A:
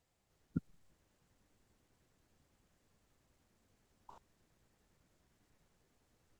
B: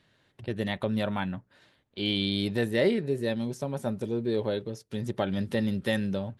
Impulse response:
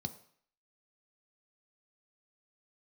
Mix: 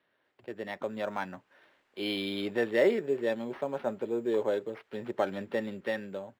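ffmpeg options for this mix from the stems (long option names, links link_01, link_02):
-filter_complex "[0:a]tiltshelf=frequency=710:gain=-9.5,adelay=250,volume=-1dB[link_01];[1:a]acrusher=samples=6:mix=1:aa=0.000001,volume=-4dB[link_02];[link_01][link_02]amix=inputs=2:normalize=0,acrossover=split=290 3000:gain=0.1 1 0.0794[link_03][link_04][link_05];[link_03][link_04][link_05]amix=inputs=3:normalize=0,dynaudnorm=framelen=210:gausssize=11:maxgain=6dB"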